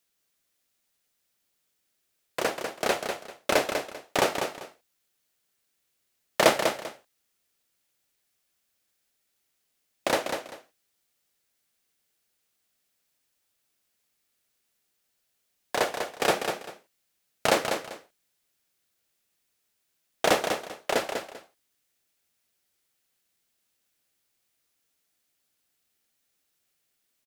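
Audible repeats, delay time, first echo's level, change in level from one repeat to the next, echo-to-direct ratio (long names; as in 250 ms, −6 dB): 2, 196 ms, −6.5 dB, −12.5 dB, −6.5 dB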